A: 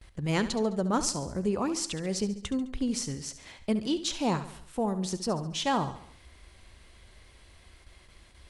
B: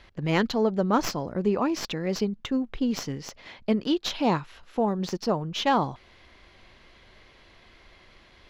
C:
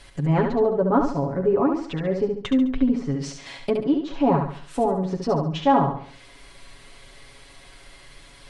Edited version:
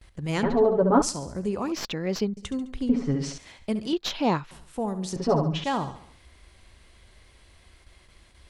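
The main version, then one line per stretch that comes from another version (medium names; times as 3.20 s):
A
0.43–1.02 s: from C
1.72–2.37 s: from B
2.89–3.38 s: from C
3.93–4.51 s: from B
5.16–5.64 s: from C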